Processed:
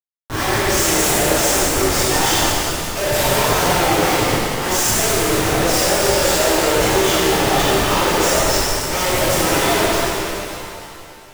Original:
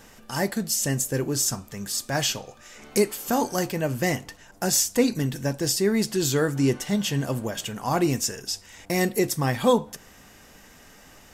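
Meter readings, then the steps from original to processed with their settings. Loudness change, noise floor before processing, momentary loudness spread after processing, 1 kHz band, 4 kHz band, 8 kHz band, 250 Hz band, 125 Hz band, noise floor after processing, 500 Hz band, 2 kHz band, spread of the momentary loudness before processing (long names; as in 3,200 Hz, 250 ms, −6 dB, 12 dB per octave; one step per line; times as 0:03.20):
+9.0 dB, −51 dBFS, 6 LU, +13.5 dB, +12.0 dB, +9.0 dB, +4.0 dB, +4.5 dB, −38 dBFS, +9.0 dB, +13.0 dB, 9 LU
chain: high-pass filter 190 Hz 6 dB per octave
low-pass that shuts in the quiet parts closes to 970 Hz, open at −24 dBFS
downward expander −47 dBFS
frequency shifter +180 Hz
comparator with hysteresis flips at −36.5 dBFS
reverb with rising layers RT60 2.6 s, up +7 semitones, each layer −8 dB, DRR −11 dB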